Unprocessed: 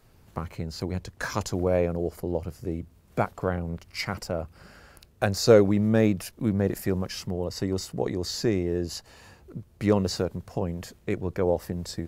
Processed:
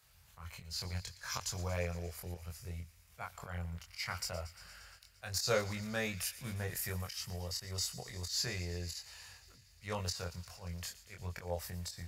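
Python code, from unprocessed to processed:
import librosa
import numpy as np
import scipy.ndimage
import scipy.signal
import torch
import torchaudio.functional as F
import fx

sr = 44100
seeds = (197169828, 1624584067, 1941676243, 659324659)

p1 = scipy.signal.sosfilt(scipy.signal.butter(4, 41.0, 'highpass', fs=sr, output='sos'), x)
p2 = fx.tone_stack(p1, sr, knobs='10-0-10')
p3 = fx.auto_swell(p2, sr, attack_ms=136.0)
p4 = fx.doubler(p3, sr, ms=23.0, db=-3.0)
y = p4 + fx.echo_wet_highpass(p4, sr, ms=116, feedback_pct=78, hz=1900.0, wet_db=-15.5, dry=0)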